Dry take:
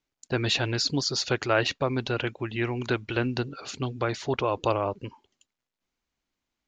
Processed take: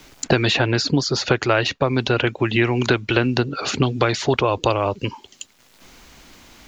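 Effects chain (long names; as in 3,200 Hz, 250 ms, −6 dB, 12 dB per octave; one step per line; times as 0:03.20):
multiband upward and downward compressor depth 100%
level +7.5 dB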